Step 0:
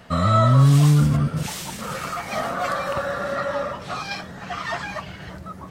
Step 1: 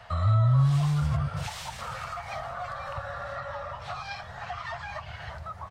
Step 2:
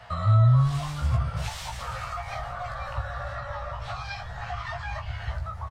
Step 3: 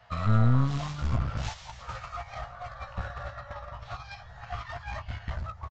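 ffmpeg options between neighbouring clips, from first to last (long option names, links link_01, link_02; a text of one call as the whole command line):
ffmpeg -i in.wav -filter_complex "[0:a]firequalizer=gain_entry='entry(110,0);entry(180,-17);entry(290,-23);entry(480,-9);entry(710,3);entry(1300,0);entry(2700,-2);entry(4100,-2);entry(6200,-6);entry(12000,-12)':delay=0.05:min_phase=1,acrossover=split=190[link_01][link_02];[link_02]acompressor=threshold=-34dB:ratio=6[link_03];[link_01][link_03]amix=inputs=2:normalize=0" out.wav
ffmpeg -i in.wav -filter_complex "[0:a]asubboost=boost=5:cutoff=100,asplit=2[link_01][link_02];[link_02]adelay=17,volume=-4dB[link_03];[link_01][link_03]amix=inputs=2:normalize=0" out.wav
ffmpeg -i in.wav -af "agate=range=-10dB:threshold=-32dB:ratio=16:detection=peak,aresample=16000,aeval=exprs='clip(val(0),-1,0.02)':channel_layout=same,aresample=44100" out.wav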